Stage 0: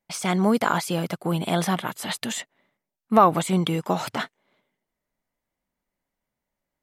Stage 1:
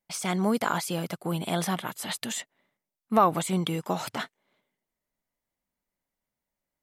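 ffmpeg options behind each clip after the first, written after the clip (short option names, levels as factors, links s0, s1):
-af "highshelf=f=5000:g=5,volume=0.562"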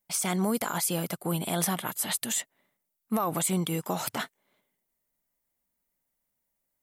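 -filter_complex "[0:a]acrossover=split=5900[s0][s1];[s0]alimiter=limit=0.112:level=0:latency=1:release=62[s2];[s1]crystalizer=i=1.5:c=0[s3];[s2][s3]amix=inputs=2:normalize=0"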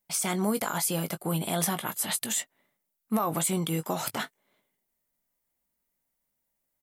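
-filter_complex "[0:a]asplit=2[s0][s1];[s1]adelay=19,volume=0.282[s2];[s0][s2]amix=inputs=2:normalize=0"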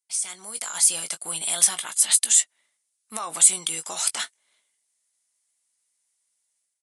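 -af "aresample=22050,aresample=44100,aderivative,dynaudnorm=f=470:g=3:m=4.22,volume=1.26"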